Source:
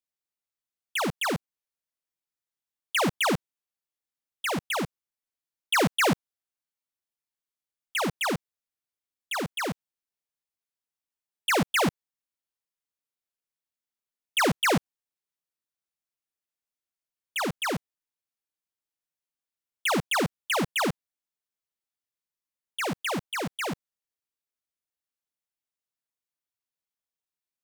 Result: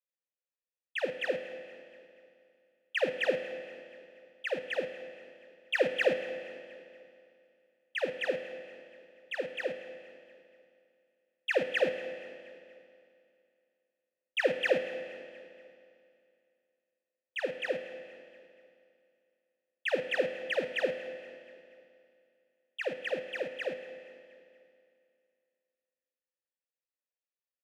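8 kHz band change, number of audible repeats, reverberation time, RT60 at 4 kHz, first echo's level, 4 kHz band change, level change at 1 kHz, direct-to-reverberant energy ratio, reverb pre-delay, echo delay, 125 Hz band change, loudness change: below −20 dB, 3, 2.5 s, 2.3 s, −18.5 dB, −9.5 dB, −15.5 dB, 8.5 dB, 8 ms, 237 ms, −20.0 dB, −6.0 dB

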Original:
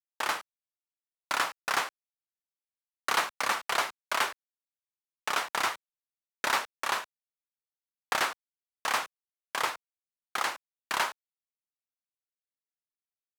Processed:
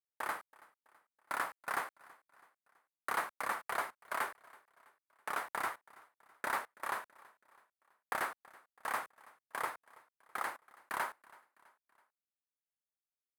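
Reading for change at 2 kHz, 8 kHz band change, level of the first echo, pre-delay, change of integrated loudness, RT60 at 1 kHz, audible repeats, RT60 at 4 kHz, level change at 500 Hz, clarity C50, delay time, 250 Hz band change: −8.0 dB, −12.5 dB, −23.0 dB, no reverb audible, −8.5 dB, no reverb audible, 2, no reverb audible, −7.0 dB, no reverb audible, 328 ms, −7.0 dB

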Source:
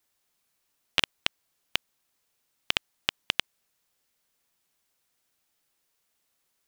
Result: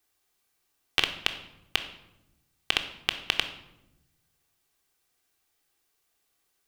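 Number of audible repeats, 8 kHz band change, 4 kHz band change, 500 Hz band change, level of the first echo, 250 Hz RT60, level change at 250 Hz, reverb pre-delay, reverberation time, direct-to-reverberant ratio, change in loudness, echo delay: no echo audible, +0.5 dB, +1.0 dB, +1.5 dB, no echo audible, 1.4 s, +1.5 dB, 3 ms, 0.90 s, 4.0 dB, +1.0 dB, no echo audible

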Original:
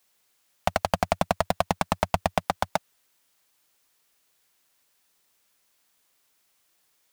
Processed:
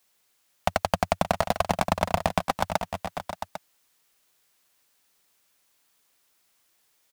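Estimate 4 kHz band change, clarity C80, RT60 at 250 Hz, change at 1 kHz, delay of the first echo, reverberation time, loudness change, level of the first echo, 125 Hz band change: +0.5 dB, no reverb audible, no reverb audible, +1.0 dB, 575 ms, no reverb audible, −0.5 dB, −12.5 dB, +0.5 dB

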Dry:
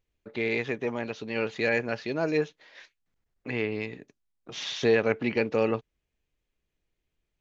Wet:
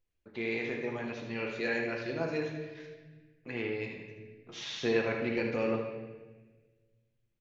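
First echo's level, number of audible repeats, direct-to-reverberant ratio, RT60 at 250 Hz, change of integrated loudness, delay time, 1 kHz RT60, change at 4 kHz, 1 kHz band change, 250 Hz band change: −7.5 dB, 1, −0.5 dB, 1.8 s, −5.5 dB, 77 ms, 1.2 s, −5.0 dB, −5.0 dB, −4.0 dB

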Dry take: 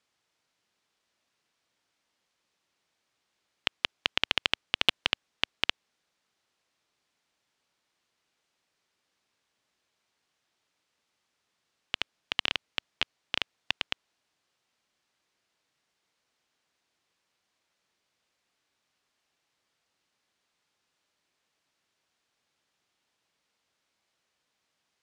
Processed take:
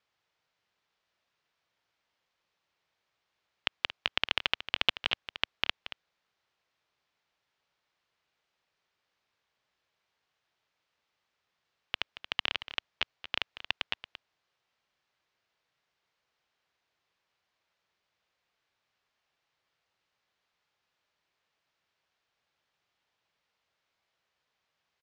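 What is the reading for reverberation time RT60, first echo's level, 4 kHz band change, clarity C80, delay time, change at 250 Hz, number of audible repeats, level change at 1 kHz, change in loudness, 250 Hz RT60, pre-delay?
no reverb audible, −13.0 dB, −2.5 dB, no reverb audible, 228 ms, −5.5 dB, 1, −1.0 dB, −2.0 dB, no reverb audible, no reverb audible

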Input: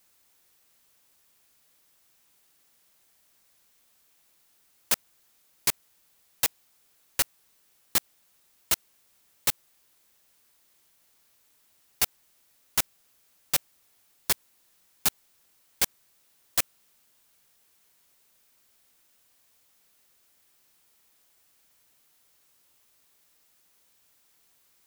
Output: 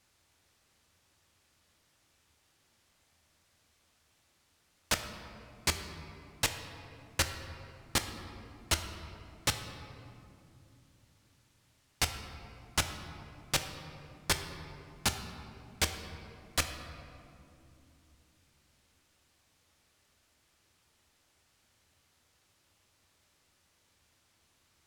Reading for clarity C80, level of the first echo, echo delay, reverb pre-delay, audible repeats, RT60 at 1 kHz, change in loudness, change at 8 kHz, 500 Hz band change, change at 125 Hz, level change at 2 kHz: 9.0 dB, no echo audible, no echo audible, 3 ms, no echo audible, 2.5 s, −7.0 dB, −5.0 dB, +1.5 dB, +9.5 dB, +0.5 dB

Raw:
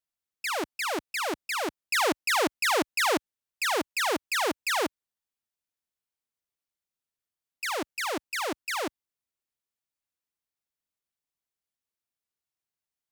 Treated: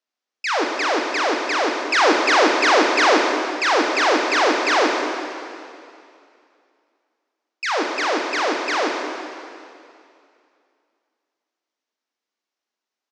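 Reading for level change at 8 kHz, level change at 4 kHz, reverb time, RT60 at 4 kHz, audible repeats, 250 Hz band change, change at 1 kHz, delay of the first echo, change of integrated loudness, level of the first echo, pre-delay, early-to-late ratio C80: +4.0 dB, +8.5 dB, 2.5 s, 2.4 s, 1, +11.0 dB, +11.5 dB, 198 ms, +9.5 dB, −11.0 dB, 7 ms, 3.5 dB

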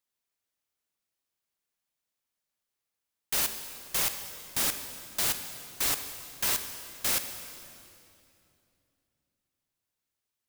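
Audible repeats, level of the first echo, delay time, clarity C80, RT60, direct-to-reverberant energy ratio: no echo audible, no echo audible, no echo audible, 9.0 dB, 2.7 s, 7.5 dB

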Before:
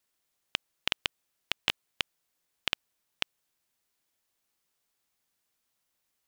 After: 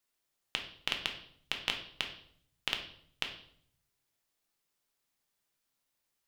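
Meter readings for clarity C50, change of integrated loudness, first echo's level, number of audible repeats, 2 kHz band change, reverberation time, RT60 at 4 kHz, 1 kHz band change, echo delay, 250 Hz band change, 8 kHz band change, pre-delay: 8.5 dB, −2.5 dB, no echo audible, no echo audible, −2.5 dB, 0.60 s, 0.55 s, −2.0 dB, no echo audible, −1.5 dB, −3.0 dB, 3 ms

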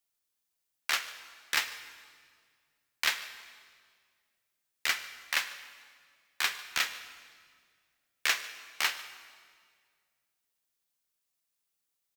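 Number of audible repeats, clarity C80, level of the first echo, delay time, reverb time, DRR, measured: 1, 12.5 dB, −20.0 dB, 147 ms, 2.0 s, 11.0 dB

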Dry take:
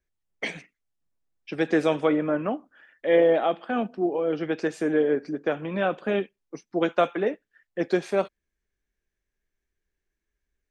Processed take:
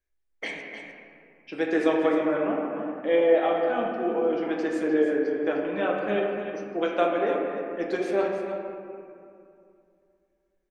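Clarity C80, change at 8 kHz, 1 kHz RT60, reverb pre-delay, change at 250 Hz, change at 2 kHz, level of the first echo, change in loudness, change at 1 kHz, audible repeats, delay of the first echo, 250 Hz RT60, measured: 2.0 dB, can't be measured, 2.4 s, 6 ms, 0.0 dB, 0.0 dB, −9.0 dB, −0.5 dB, +1.0 dB, 1, 305 ms, 3.1 s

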